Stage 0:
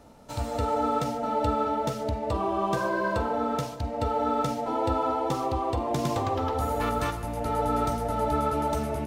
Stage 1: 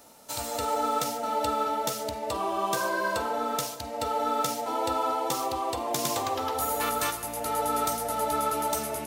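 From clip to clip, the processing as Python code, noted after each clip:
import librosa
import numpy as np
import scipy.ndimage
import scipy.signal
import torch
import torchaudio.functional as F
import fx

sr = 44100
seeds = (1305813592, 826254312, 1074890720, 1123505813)

y = fx.riaa(x, sr, side='recording')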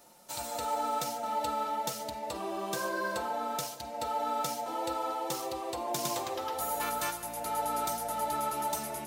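y = x + 0.56 * np.pad(x, (int(5.6 * sr / 1000.0), 0))[:len(x)]
y = y * librosa.db_to_amplitude(-6.0)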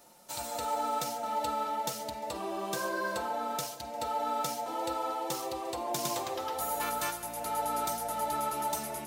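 y = x + 10.0 ** (-23.5 / 20.0) * np.pad(x, (int(350 * sr / 1000.0), 0))[:len(x)]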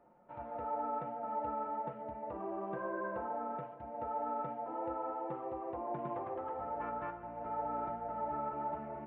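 y = scipy.ndimage.gaussian_filter1d(x, 5.6, mode='constant')
y = y * librosa.db_to_amplitude(-3.0)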